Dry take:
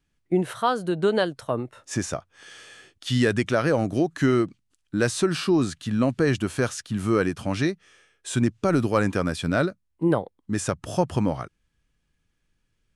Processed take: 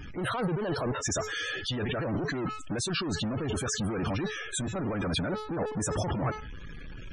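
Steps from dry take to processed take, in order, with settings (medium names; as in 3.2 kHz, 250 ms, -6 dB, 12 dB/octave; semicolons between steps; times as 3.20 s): de-hum 429.5 Hz, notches 18; time stretch by phase-locked vocoder 0.55×; compressor with a negative ratio -34 dBFS, ratio -1; power-law waveshaper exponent 0.35; loudest bins only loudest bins 64; trim -8 dB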